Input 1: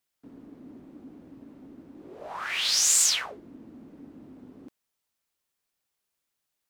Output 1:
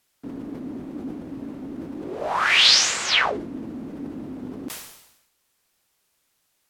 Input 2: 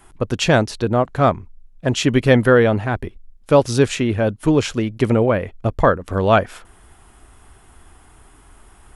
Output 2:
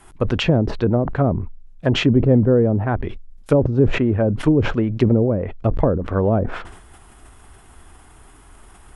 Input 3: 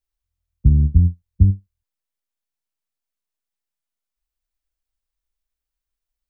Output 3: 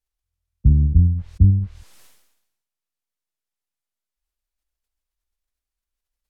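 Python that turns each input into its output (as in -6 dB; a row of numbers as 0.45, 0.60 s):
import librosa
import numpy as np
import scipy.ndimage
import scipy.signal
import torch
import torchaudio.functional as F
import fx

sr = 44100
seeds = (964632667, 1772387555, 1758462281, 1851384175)

y = fx.env_lowpass_down(x, sr, base_hz=420.0, full_db=-12.5)
y = fx.sustainer(y, sr, db_per_s=63.0)
y = librosa.util.normalize(y) * 10.0 ** (-3 / 20.0)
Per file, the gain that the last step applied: +13.0, +1.0, -1.5 dB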